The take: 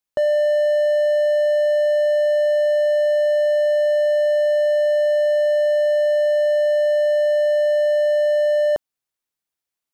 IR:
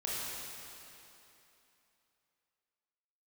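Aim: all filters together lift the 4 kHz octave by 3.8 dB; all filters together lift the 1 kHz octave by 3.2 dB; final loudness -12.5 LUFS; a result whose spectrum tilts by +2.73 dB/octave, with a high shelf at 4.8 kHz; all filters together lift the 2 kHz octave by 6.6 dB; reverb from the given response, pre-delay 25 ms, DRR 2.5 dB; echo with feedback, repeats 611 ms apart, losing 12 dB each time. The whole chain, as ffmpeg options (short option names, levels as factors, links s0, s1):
-filter_complex "[0:a]equalizer=f=1000:t=o:g=6.5,equalizer=f=2000:t=o:g=5.5,equalizer=f=4000:t=o:g=5,highshelf=f=4800:g=-6.5,aecho=1:1:611|1222|1833:0.251|0.0628|0.0157,asplit=2[s0][s1];[1:a]atrim=start_sample=2205,adelay=25[s2];[s1][s2]afir=irnorm=-1:irlink=0,volume=0.447[s3];[s0][s3]amix=inputs=2:normalize=0,volume=0.841"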